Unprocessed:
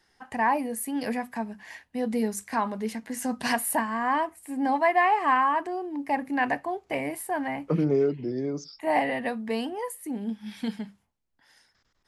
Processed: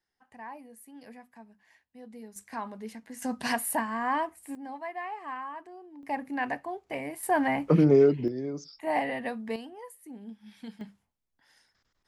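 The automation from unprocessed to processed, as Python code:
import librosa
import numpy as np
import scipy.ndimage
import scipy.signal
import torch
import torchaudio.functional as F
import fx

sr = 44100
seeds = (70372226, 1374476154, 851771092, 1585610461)

y = fx.gain(x, sr, db=fx.steps((0.0, -19.0), (2.36, -9.5), (3.22, -3.0), (4.55, -15.5), (6.03, -5.5), (7.23, 4.0), (8.28, -4.0), (9.56, -12.0), (10.81, -4.0)))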